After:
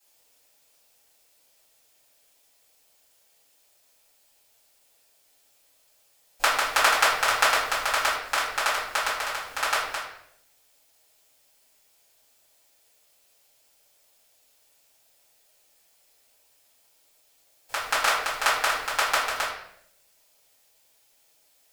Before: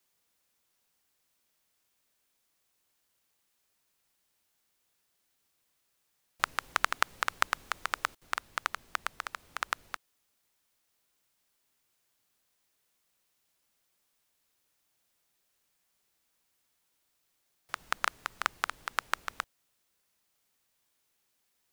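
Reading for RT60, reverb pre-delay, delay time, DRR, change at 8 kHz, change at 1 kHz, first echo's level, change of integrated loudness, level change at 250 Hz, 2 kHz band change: 0.70 s, 4 ms, none, -11.0 dB, +13.5 dB, +9.5 dB, none, +10.0 dB, +7.5 dB, +9.5 dB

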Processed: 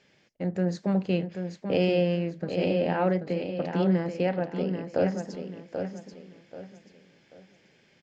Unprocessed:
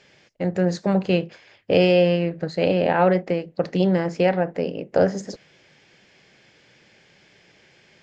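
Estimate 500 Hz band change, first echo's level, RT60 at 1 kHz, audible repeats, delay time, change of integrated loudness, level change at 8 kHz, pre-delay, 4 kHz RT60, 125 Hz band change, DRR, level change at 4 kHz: -7.0 dB, -7.0 dB, none, 3, 0.785 s, -7.0 dB, n/a, none, none, -4.0 dB, none, -8.0 dB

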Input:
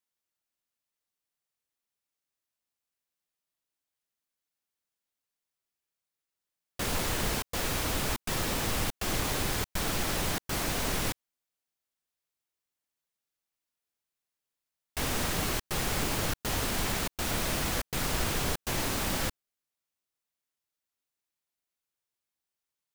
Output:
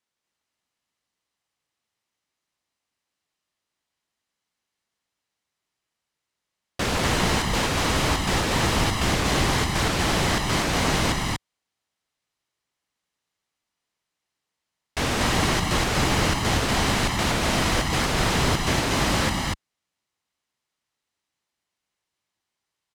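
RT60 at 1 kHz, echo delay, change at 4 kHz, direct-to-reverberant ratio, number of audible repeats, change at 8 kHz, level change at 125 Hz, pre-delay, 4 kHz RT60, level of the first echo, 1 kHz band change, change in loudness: none, 0.241 s, +9.0 dB, none, 1, +5.0 dB, +10.5 dB, none, none, -2.5 dB, +10.5 dB, +8.0 dB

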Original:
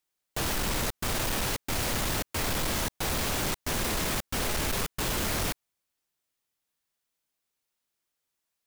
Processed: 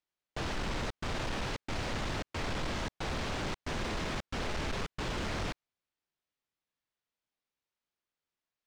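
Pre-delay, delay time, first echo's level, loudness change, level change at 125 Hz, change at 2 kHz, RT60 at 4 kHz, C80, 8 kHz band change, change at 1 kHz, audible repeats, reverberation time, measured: none, none, none, -7.5 dB, -4.0 dB, -5.5 dB, none, none, -15.5 dB, -4.5 dB, none, none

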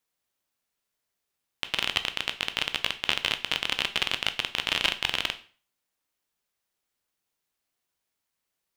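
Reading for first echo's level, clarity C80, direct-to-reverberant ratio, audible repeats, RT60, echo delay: none, 20.0 dB, 9.0 dB, none, 0.40 s, none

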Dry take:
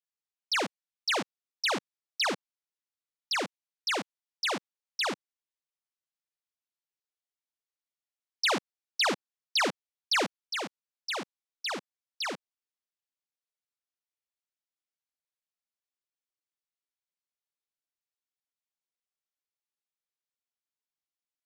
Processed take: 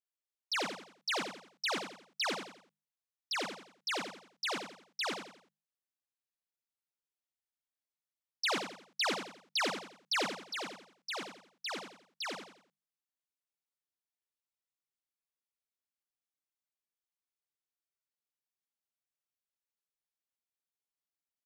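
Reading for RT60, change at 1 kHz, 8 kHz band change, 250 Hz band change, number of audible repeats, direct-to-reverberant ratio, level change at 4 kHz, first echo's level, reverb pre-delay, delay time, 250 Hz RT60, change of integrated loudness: none, -5.0 dB, -5.0 dB, -5.5 dB, 4, none, -5.0 dB, -7.0 dB, none, 87 ms, none, -5.5 dB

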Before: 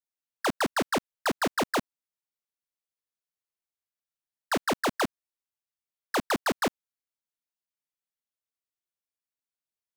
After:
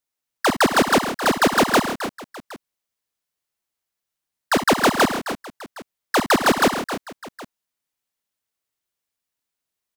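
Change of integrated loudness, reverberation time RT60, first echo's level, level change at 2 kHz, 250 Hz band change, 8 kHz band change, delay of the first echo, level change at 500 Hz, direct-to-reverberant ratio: +10.0 dB, none, -9.5 dB, +10.5 dB, +10.5 dB, +11.0 dB, 61 ms, +10.5 dB, none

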